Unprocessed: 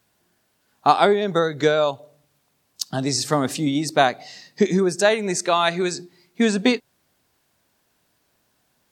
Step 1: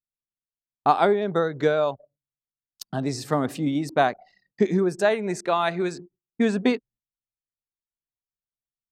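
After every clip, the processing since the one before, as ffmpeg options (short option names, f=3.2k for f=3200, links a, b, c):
-af "agate=range=-14dB:threshold=-49dB:ratio=16:detection=peak,anlmdn=2.51,equalizer=f=6.2k:w=0.56:g=-11,volume=-2.5dB"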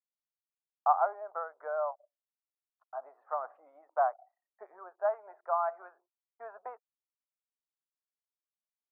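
-af "asuperpass=centerf=920:order=8:qfactor=1.2,volume=-6dB"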